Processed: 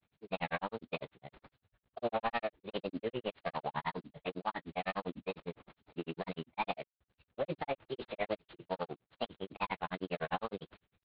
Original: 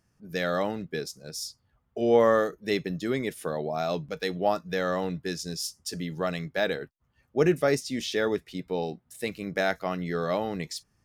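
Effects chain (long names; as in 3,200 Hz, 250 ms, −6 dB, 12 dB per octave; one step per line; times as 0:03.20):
variable-slope delta modulation 16 kbit/s
brickwall limiter −20 dBFS, peak gain reduction 9 dB
formants moved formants +6 semitones
granular cloud 78 ms, grains 9.9 per second, spray 20 ms, pitch spread up and down by 0 semitones
tape wow and flutter 97 cents
level −2.5 dB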